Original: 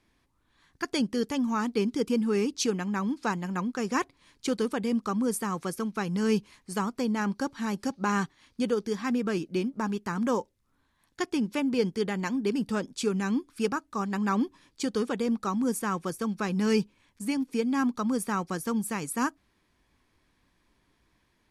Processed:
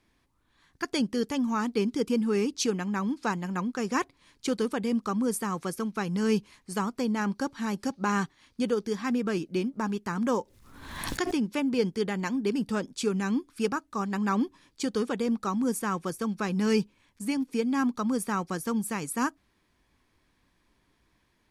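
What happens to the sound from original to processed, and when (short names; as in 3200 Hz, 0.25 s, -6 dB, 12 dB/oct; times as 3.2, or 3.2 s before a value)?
10.28–11.36 backwards sustainer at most 50 dB/s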